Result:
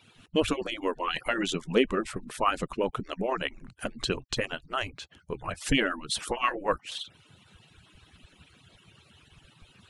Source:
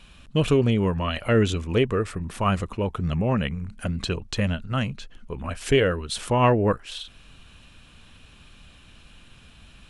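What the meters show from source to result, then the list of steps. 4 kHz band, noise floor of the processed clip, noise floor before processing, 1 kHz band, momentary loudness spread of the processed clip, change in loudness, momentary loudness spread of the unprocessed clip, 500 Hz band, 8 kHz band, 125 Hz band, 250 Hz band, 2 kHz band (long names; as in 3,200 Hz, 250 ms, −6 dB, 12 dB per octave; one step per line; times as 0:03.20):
−0.5 dB, −61 dBFS, −51 dBFS, −3.0 dB, 11 LU, −6.0 dB, 12 LU, −6.5 dB, −0.5 dB, −16.0 dB, −7.0 dB, −1.0 dB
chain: harmonic-percussive split with one part muted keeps percussive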